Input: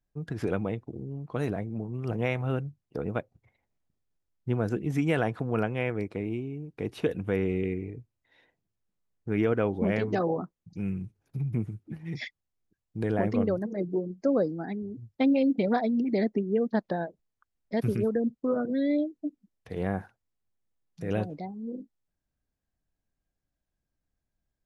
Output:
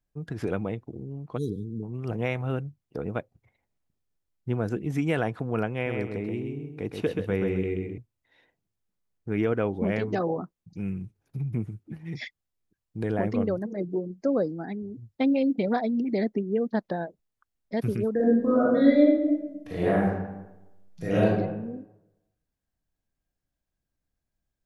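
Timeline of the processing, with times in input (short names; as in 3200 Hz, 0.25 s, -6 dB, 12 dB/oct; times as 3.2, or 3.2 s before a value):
1.38–1.83 spectral delete 490–3200 Hz
5.73–7.98 feedback echo 0.13 s, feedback 27%, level -5 dB
18.15–21.34 reverb throw, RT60 1 s, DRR -8 dB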